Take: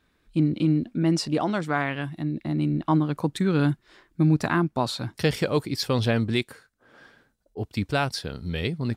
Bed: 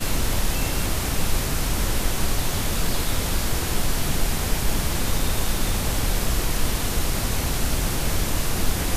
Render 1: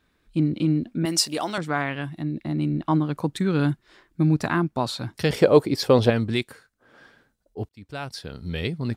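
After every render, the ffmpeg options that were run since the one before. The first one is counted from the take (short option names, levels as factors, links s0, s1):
-filter_complex "[0:a]asettb=1/sr,asplit=3[s0][s1][s2];[s0]atrim=end=1.054[s3];[s1]atrim=start=1.05:end=1.58,asetpts=PTS-STARTPTS,afade=t=in:d=0.004:c=qsin,afade=t=out:st=0.526:d=0.004:c=qsin,aemphasis=mode=production:type=riaa[s4];[s2]atrim=start=1.576[s5];[s3][s4]acrossfade=d=0.004:c1=hsin:c2=qsin[s6];[s6][s5]acrossfade=d=0.004:c1=qsin:c2=hsin,asettb=1/sr,asplit=3[s7][s8][s9];[s7]atrim=end=5.304[s10];[s8]atrim=start=5.3:end=6.1,asetpts=PTS-STARTPTS,afade=t=in:d=0.004:c=qsin,afade=t=out:st=0.796:d=0.004:c=qsin,equalizer=f=520:w=0.62:g=10.5[s11];[s9]atrim=start=6.096[s12];[s10][s11]acrossfade=d=0.004:c1=hsin:c2=qsin[s13];[s13][s12]acrossfade=d=0.004:c1=qsin:c2=hsin,asplit=2[s14][s15];[s14]atrim=end=7.69,asetpts=PTS-STARTPTS,afade=t=out:st=7.686:d=0.004:c=hsin[s16];[s15]atrim=start=7.69,asetpts=PTS-STARTPTS,afade=t=in:d=0.85[s17];[s16][s17]concat=n=2:v=0:a=1"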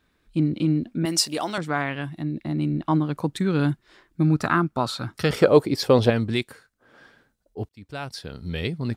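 -filter_complex "[0:a]asettb=1/sr,asplit=3[s0][s1][s2];[s0]atrim=end=4.244[s3];[s1]atrim=start=4.24:end=5.48,asetpts=PTS-STARTPTS,afade=t=in:d=0.004:c=qsin,afade=t=out:st=1.236:d=0.004:c=qsin,equalizer=f=1300:w=5.2:g=12[s4];[s2]atrim=start=5.476[s5];[s3][s4]acrossfade=d=0.004:c1=hsin:c2=qsin[s6];[s6][s5]acrossfade=d=0.004:c1=qsin:c2=hsin"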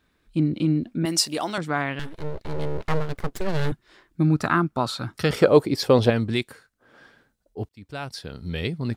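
-filter_complex "[0:a]asettb=1/sr,asplit=3[s0][s1][s2];[s0]atrim=end=1.994[s3];[s1]atrim=start=1.99:end=3.72,asetpts=PTS-STARTPTS,afade=t=in:d=0.004:c=qsin,afade=t=out:st=1.726:d=0.004:c=qsin,aeval=exprs='abs(val(0))':c=same[s4];[s2]atrim=start=3.716[s5];[s3][s4]acrossfade=d=0.004:c1=hsin:c2=qsin[s6];[s6][s5]acrossfade=d=0.004:c1=qsin:c2=hsin"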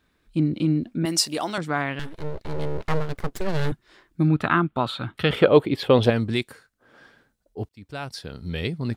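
-filter_complex "[0:a]asettb=1/sr,asplit=3[s0][s1][s2];[s0]atrim=end=4.284[s3];[s1]atrim=start=4.28:end=6.03,asetpts=PTS-STARTPTS,afade=t=in:d=0.004:c=qsin,afade=t=out:st=1.746:d=0.004:c=qsin,highshelf=f=4200:t=q:w=3:g=-8.5[s4];[s2]atrim=start=6.026[s5];[s3][s4]acrossfade=d=0.004:c1=hsin:c2=qsin[s6];[s6][s5]acrossfade=d=0.004:c1=qsin:c2=hsin"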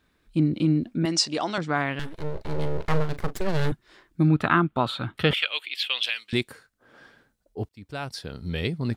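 -filter_complex "[0:a]asettb=1/sr,asplit=3[s0][s1][s2];[s0]atrim=end=1.064[s3];[s1]atrim=start=1.06:end=1.75,asetpts=PTS-STARTPTS,afade=t=in:d=0.004:c=qsin,afade=t=out:st=0.686:d=0.004:c=qsin,lowpass=f=6900:w=0.5412,lowpass=f=6900:w=1.3066[s4];[s2]atrim=start=1.746[s5];[s3][s4]acrossfade=d=0.004:c1=hsin:c2=qsin[s6];[s6][s5]acrossfade=d=0.004:c1=qsin:c2=hsin,asettb=1/sr,asplit=3[s7][s8][s9];[s7]atrim=end=2.314[s10];[s8]atrim=start=2.31:end=3.37,asetpts=PTS-STARTPTS,afade=t=in:d=0.004:c=qsin,afade=t=out:st=1.056:d=0.004:c=qsin,asplit=2[s11][s12];[s12]adelay=39,volume=0.251[s13];[s11][s13]amix=inputs=2:normalize=0,atrim=end_sample=46746[s14];[s9]atrim=start=3.366[s15];[s10][s14]acrossfade=d=0.004:c1=hsin:c2=qsin[s16];[s16][s15]acrossfade=d=0.004:c1=qsin:c2=hsin,asettb=1/sr,asplit=3[s17][s18][s19];[s17]atrim=end=5.334[s20];[s18]atrim=start=5.33:end=6.33,asetpts=PTS-STARTPTS,afade=t=in:d=0.004:c=qsin,afade=t=out:st=0.996:d=0.004:c=qsin,highpass=f=2700:t=q:w=2.8[s21];[s19]atrim=start=6.326[s22];[s20][s21]acrossfade=d=0.004:c1=hsin:c2=qsin[s23];[s23][s22]acrossfade=d=0.004:c1=qsin:c2=hsin"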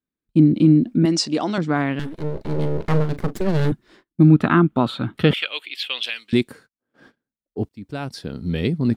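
-af "agate=range=0.0398:threshold=0.00282:ratio=16:detection=peak,equalizer=f=240:t=o:w=1.8:g=10.5"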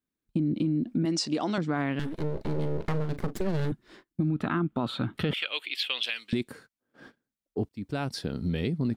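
-af "alimiter=limit=0.282:level=0:latency=1:release=19,acompressor=threshold=0.0447:ratio=3"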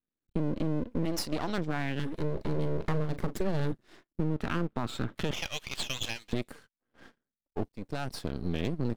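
-af "aeval=exprs='max(val(0),0)':c=same"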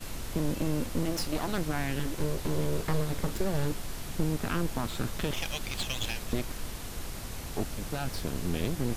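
-filter_complex "[1:a]volume=0.178[s0];[0:a][s0]amix=inputs=2:normalize=0"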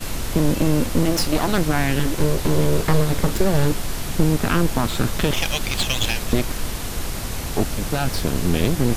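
-af "volume=3.76"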